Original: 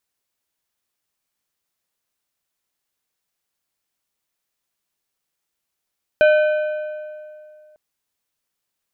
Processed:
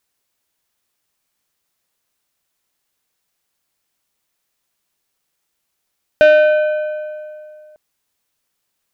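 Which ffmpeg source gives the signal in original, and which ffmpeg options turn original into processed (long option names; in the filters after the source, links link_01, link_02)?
-f lavfi -i "aevalsrc='0.355*pow(10,-3*t/2.37)*sin(2*PI*610*t)+0.141*pow(10,-3*t/1.8)*sin(2*PI*1525*t)+0.0562*pow(10,-3*t/1.564)*sin(2*PI*2440*t)+0.0224*pow(10,-3*t/1.462)*sin(2*PI*3050*t)+0.00891*pow(10,-3*t/1.352)*sin(2*PI*3965*t)':duration=1.55:sample_rate=44100"
-af "acontrast=64"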